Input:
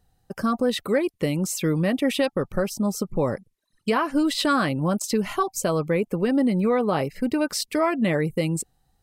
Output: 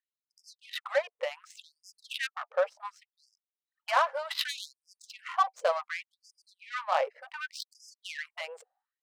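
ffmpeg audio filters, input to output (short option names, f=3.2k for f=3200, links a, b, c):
-af "adynamicsmooth=sensitivity=2:basefreq=1.1k,afftfilt=real='re*gte(b*sr/1024,430*pow(4900/430,0.5+0.5*sin(2*PI*0.67*pts/sr)))':imag='im*gte(b*sr/1024,430*pow(4900/430,0.5+0.5*sin(2*PI*0.67*pts/sr)))':win_size=1024:overlap=0.75"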